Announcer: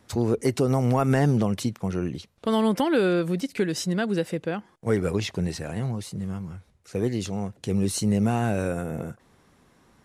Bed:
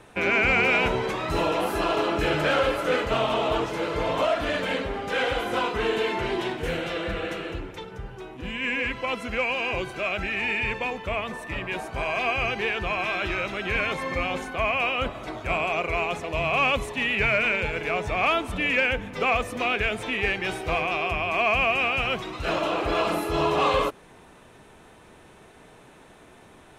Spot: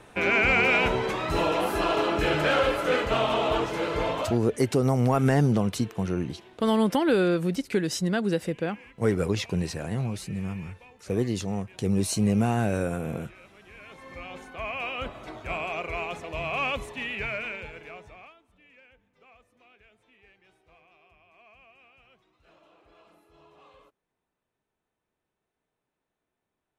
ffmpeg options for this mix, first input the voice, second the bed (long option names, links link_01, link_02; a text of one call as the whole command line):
ffmpeg -i stem1.wav -i stem2.wav -filter_complex "[0:a]adelay=4150,volume=-0.5dB[link_01];[1:a]volume=17dB,afade=type=out:start_time=4.04:duration=0.36:silence=0.0707946,afade=type=in:start_time=13.78:duration=1.34:silence=0.133352,afade=type=out:start_time=16.76:duration=1.58:silence=0.0398107[link_02];[link_01][link_02]amix=inputs=2:normalize=0" out.wav